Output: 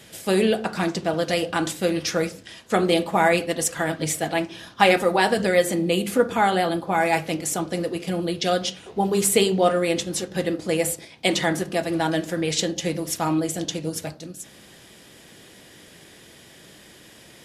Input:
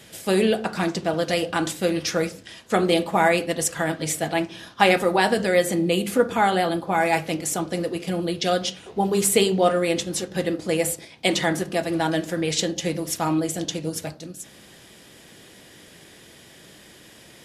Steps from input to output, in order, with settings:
0:03.32–0:05.91: phase shifter 1.4 Hz, delay 4.5 ms, feedback 24%

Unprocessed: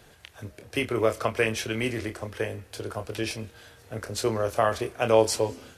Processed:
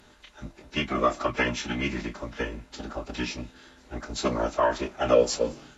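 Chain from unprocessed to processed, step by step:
hollow resonant body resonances 1,100/3,800 Hz, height 13 dB, ringing for 95 ms
phase-vocoder pitch shift with formants kept −10.5 semitones

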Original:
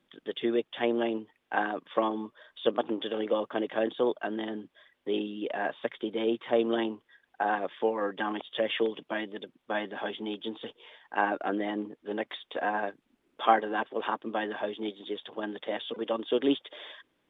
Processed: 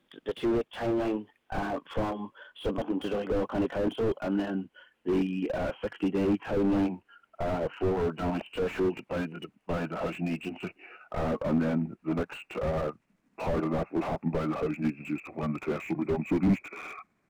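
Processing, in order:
pitch glide at a constant tempo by −6.5 semitones starting unshifted
noise reduction from a noise print of the clip's start 6 dB
slew-rate limiting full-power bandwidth 9.4 Hz
level +8 dB

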